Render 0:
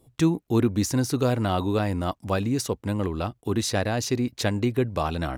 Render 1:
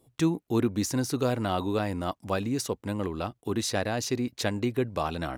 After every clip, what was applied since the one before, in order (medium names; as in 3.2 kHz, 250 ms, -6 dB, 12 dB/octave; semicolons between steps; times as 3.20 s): bass shelf 100 Hz -9 dB; trim -2.5 dB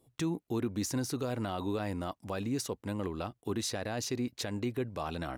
peak limiter -19.5 dBFS, peak gain reduction 8.5 dB; trim -4 dB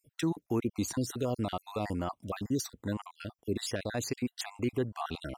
random holes in the spectrogram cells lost 50%; trim +3 dB